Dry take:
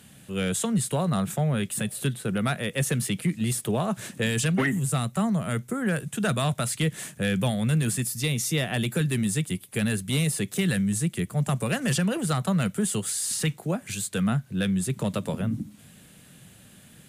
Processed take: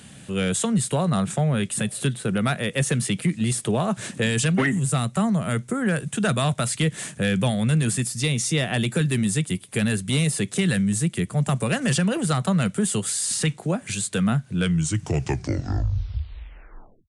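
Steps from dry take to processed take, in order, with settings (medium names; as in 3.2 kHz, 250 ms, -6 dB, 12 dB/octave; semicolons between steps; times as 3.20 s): tape stop on the ending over 2.63 s; in parallel at -2 dB: compression, threshold -35 dBFS, peak gain reduction 14 dB; on the sum: resampled via 22.05 kHz; trim +1.5 dB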